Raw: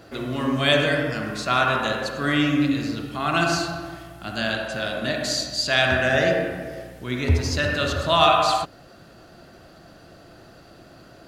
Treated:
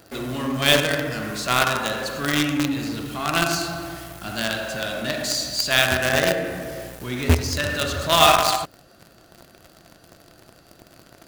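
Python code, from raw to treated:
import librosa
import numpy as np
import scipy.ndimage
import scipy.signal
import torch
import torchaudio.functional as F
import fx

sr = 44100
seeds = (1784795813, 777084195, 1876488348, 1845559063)

p1 = fx.high_shelf(x, sr, hz=8000.0, db=11.5)
p2 = fx.quant_companded(p1, sr, bits=2)
p3 = p1 + (p2 * librosa.db_to_amplitude(-5.0))
y = p3 * librosa.db_to_amplitude(-5.0)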